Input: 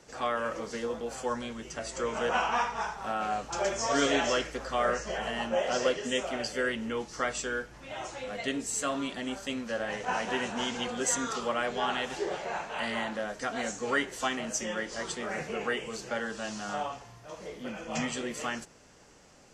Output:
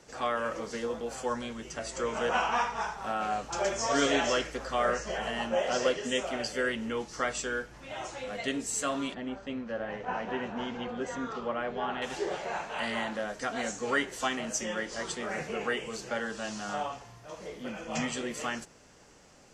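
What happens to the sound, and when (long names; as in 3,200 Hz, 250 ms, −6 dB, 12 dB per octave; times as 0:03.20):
0:09.14–0:12.02: head-to-tape spacing loss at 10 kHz 30 dB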